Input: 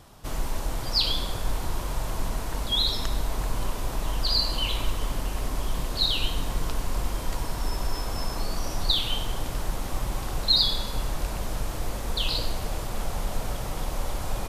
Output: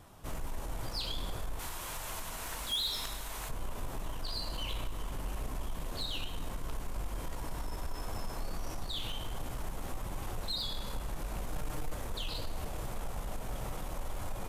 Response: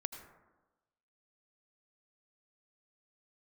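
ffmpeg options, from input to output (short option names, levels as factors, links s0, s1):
-filter_complex "[0:a]equalizer=f=4700:w=1.5:g=-5.5,acompressor=threshold=0.0501:ratio=4,asettb=1/sr,asplit=3[s0][s1][s2];[s0]atrim=end=1.594[s3];[s1]atrim=start=1.59:end=3.49,asetpts=PTS-STARTPTS,afade=t=in:d=0.004:c=qsin,afade=t=out:st=1.896:d=0.004:c=qsin,tiltshelf=f=870:g=-8[s4];[s2]atrim=start=3.486[s5];[s3][s4]acrossfade=d=0.004:c1=hsin:c2=qsin[s6];[s6][s5]acrossfade=d=0.004:c1=qsin:c2=hsin,asettb=1/sr,asplit=3[s7][s8][s9];[s7]atrim=end=11.524[s10];[s8]atrim=start=11.52:end=11.95,asetpts=PTS-STARTPTS,afade=t=in:d=0.004:c=qsin,afade=t=out:st=0.426:d=0.004:c=qsin,aecho=1:1:6.6:0.93,atrim=end_sample=18963[s11];[s9]atrim=start=11.946[s12];[s10][s11]acrossfade=d=0.004:c1=hsin:c2=qsin[s13];[s13][s12]acrossfade=d=0.004:c1=qsin:c2=hsin,asoftclip=type=tanh:threshold=0.0562,flanger=delay=9.6:depth=9.6:regen=-48:speed=0.49:shape=triangular"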